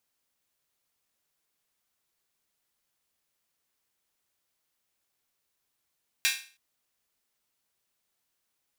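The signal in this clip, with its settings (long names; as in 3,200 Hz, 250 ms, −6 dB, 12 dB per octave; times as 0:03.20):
open synth hi-hat length 0.32 s, high-pass 2,100 Hz, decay 0.39 s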